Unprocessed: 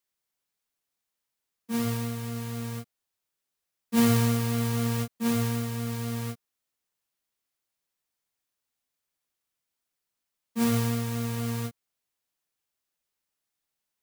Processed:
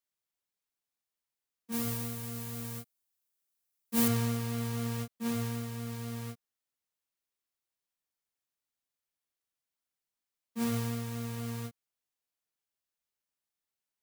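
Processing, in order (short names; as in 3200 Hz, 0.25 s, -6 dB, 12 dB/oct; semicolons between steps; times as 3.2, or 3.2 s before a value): 1.72–4.08 high shelf 6900 Hz +11.5 dB; gain -7 dB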